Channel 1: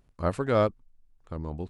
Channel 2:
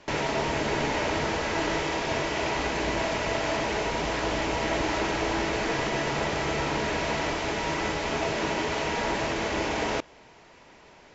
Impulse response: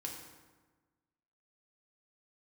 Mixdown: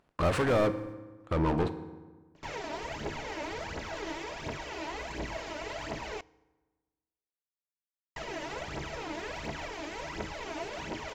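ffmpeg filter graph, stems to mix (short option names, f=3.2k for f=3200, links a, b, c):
-filter_complex "[0:a]agate=range=-19dB:threshold=-51dB:ratio=16:detection=peak,acompressor=threshold=-23dB:ratio=6,asplit=2[a][b];[b]highpass=f=720:p=1,volume=33dB,asoftclip=type=tanh:threshold=-19.5dB[c];[a][c]amix=inputs=2:normalize=0,lowpass=f=1.8k:p=1,volume=-6dB,volume=-3.5dB,asplit=2[d][e];[e]volume=-3.5dB[f];[1:a]aphaser=in_gain=1:out_gain=1:delay=3.5:decay=0.67:speed=1.4:type=triangular,adelay=2350,volume=-14dB,asplit=3[g][h][i];[g]atrim=end=6.21,asetpts=PTS-STARTPTS,afade=t=out:st=6.206:d=0.004:c=hsin[j];[h]atrim=start=6.21:end=8.16,asetpts=PTS-STARTPTS,volume=0[k];[i]atrim=start=8.16,asetpts=PTS-STARTPTS,afade=t=in:d=0.004:c=hsin[l];[j][k][l]concat=n=3:v=0:a=1,asplit=2[m][n];[n]volume=-17.5dB[o];[2:a]atrim=start_sample=2205[p];[f][o]amix=inputs=2:normalize=0[q];[q][p]afir=irnorm=-1:irlink=0[r];[d][m][r]amix=inputs=3:normalize=0"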